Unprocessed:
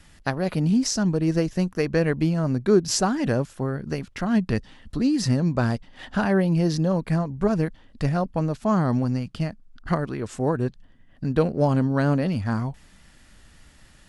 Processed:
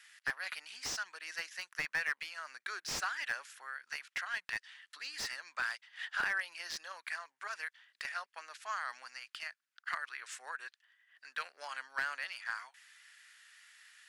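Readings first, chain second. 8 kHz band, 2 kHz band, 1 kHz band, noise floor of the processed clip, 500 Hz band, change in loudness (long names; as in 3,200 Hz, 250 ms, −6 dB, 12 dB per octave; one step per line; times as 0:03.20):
−12.0 dB, −1.0 dB, −12.0 dB, below −85 dBFS, −31.0 dB, −15.5 dB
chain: four-pole ladder high-pass 1,400 Hz, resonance 40%
slew-rate limiting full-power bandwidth 47 Hz
level +4 dB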